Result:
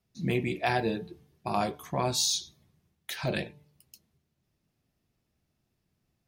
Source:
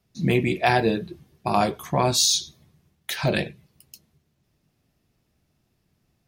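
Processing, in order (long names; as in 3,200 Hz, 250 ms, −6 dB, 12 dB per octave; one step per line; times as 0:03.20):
hum removal 147.3 Hz, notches 7
level −7.5 dB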